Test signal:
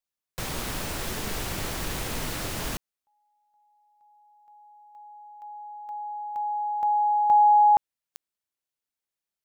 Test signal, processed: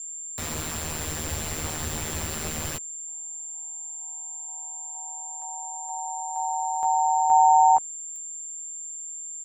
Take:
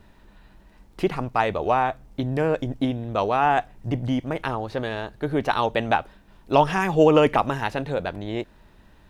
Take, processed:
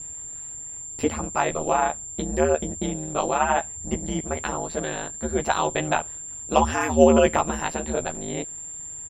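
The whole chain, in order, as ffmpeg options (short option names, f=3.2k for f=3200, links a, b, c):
-filter_complex "[0:a]asplit=2[a][b];[b]adelay=13,volume=-3dB[c];[a][c]amix=inputs=2:normalize=0,aeval=exprs='val(0)+0.0282*sin(2*PI*7300*n/s)':c=same,aeval=exprs='val(0)*sin(2*PI*78*n/s)':c=same"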